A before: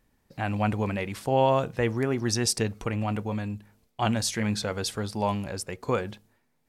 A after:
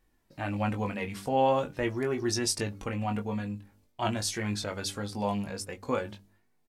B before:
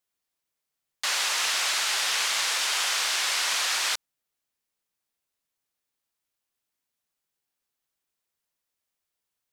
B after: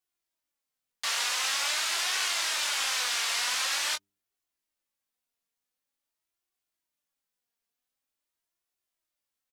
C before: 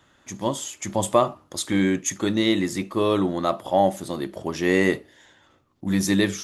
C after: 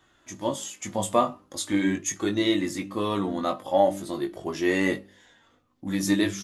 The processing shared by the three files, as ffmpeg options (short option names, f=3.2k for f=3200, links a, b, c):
-filter_complex "[0:a]bandreject=f=98.24:t=h:w=4,bandreject=f=196.48:t=h:w=4,bandreject=f=294.72:t=h:w=4,bandreject=f=392.96:t=h:w=4,flanger=delay=2.6:depth=1.8:regen=48:speed=0.46:shape=triangular,asplit=2[a][b];[b]adelay=20,volume=-6dB[c];[a][c]amix=inputs=2:normalize=0"